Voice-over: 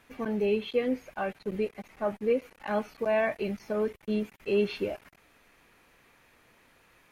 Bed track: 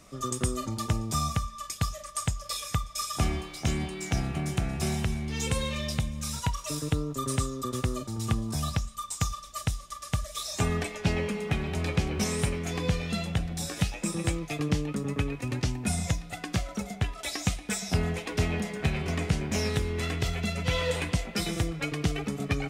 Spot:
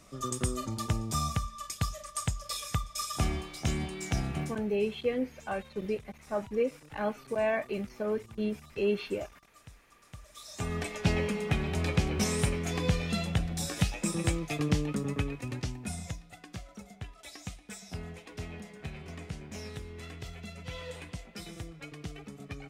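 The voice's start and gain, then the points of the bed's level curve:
4.30 s, -2.5 dB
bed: 4.43 s -2.5 dB
4.64 s -23 dB
9.99 s -23 dB
10.95 s -0.5 dB
14.95 s -0.5 dB
16.45 s -13.5 dB

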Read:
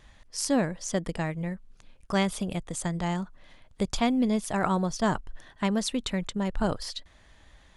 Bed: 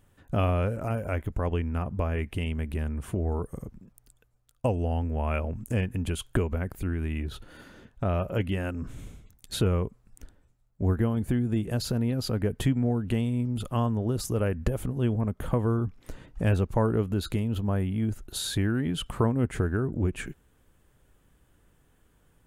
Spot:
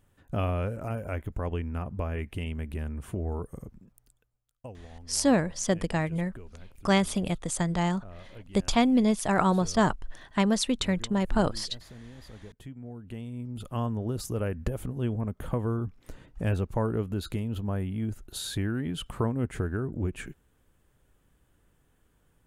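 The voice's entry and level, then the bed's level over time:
4.75 s, +2.5 dB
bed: 4.00 s -3.5 dB
4.82 s -20 dB
12.58 s -20 dB
13.84 s -3.5 dB

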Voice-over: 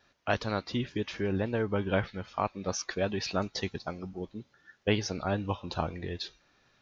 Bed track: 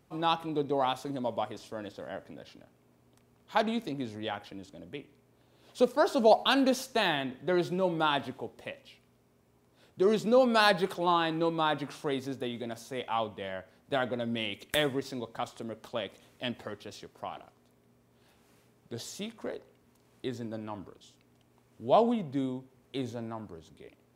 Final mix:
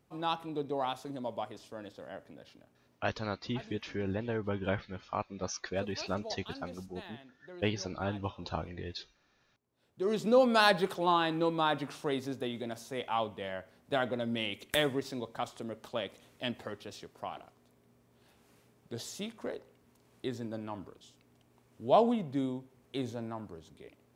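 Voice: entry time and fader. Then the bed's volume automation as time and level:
2.75 s, -4.5 dB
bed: 2.95 s -5 dB
3.17 s -21 dB
9.55 s -21 dB
10.26 s -1 dB

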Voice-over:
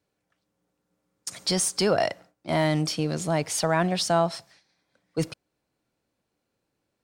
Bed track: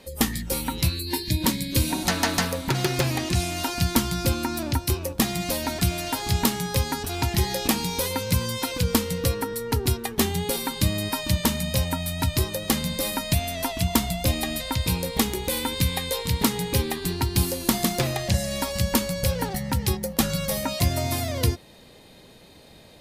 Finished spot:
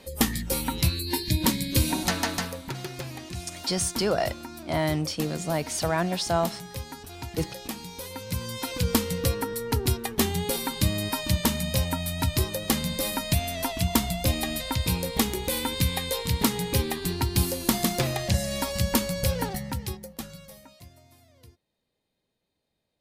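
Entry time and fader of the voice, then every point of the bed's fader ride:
2.20 s, -2.5 dB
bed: 1.96 s -0.5 dB
2.91 s -12.5 dB
7.98 s -12.5 dB
8.88 s -1.5 dB
19.46 s -1.5 dB
21.05 s -30.5 dB

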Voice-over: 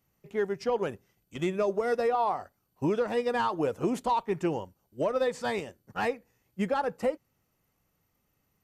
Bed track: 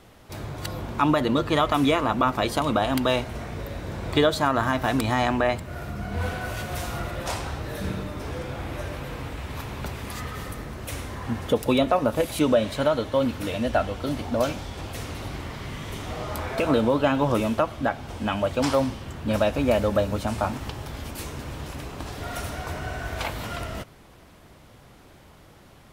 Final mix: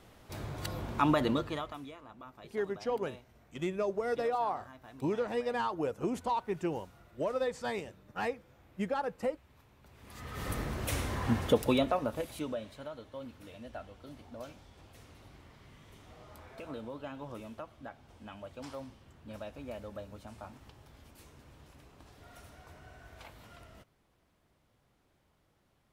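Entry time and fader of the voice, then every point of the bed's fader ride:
2.20 s, -5.0 dB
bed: 1.29 s -6 dB
1.94 s -28.5 dB
9.83 s -28.5 dB
10.52 s -0.5 dB
11.32 s -0.5 dB
12.82 s -21.5 dB

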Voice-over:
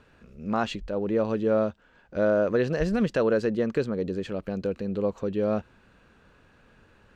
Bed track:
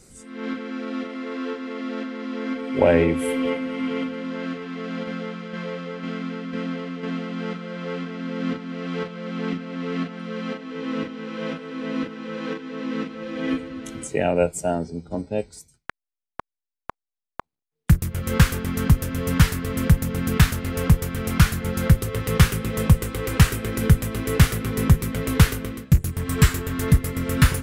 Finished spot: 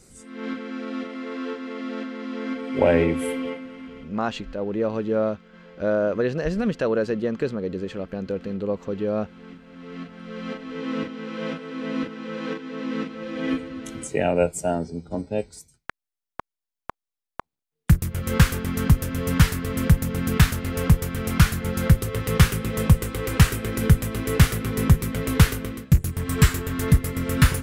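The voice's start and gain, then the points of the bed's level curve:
3.65 s, +0.5 dB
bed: 3.23 s -1.5 dB
4.03 s -17 dB
9.46 s -17 dB
10.64 s -0.5 dB

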